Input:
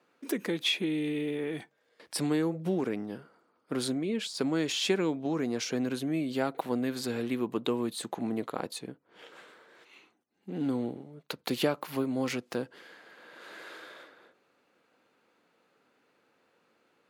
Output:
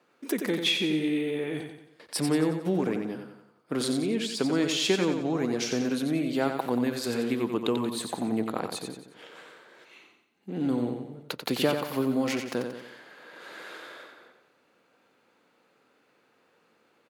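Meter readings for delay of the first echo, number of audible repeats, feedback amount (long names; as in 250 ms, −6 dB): 90 ms, 5, 45%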